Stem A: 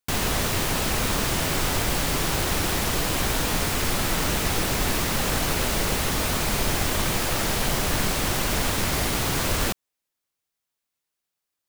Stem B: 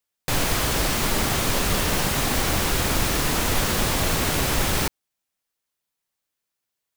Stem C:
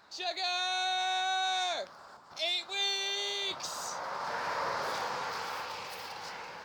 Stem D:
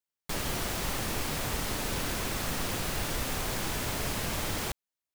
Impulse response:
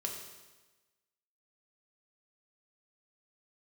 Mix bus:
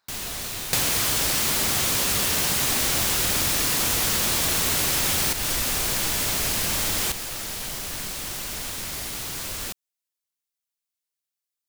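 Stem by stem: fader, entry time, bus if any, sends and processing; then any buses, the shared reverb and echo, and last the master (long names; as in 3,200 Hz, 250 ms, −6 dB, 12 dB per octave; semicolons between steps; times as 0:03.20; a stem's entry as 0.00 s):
−13.5 dB, 0.00 s, no send, no processing
+1.0 dB, 0.45 s, no send, high-pass filter 57 Hz
−18.0 dB, 0.00 s, no send, no processing
+3.0 dB, 2.40 s, no send, no processing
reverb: not used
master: high-shelf EQ 2,400 Hz +11 dB; downward compressor, threshold −20 dBFS, peak gain reduction 8 dB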